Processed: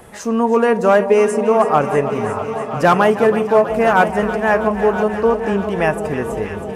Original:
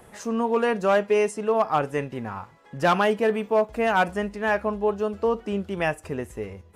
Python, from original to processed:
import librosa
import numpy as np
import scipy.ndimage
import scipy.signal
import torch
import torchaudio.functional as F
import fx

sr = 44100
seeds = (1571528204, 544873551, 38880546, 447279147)

y = fx.echo_alternate(x, sr, ms=161, hz=880.0, feedback_pct=88, wet_db=-11)
y = fx.dynamic_eq(y, sr, hz=3600.0, q=1.1, threshold_db=-44.0, ratio=4.0, max_db=-7)
y = y + 10.0 ** (-13.5 / 20.0) * np.pad(y, (int(1001 * sr / 1000.0), 0))[:len(y)]
y = F.gain(torch.from_numpy(y), 8.0).numpy()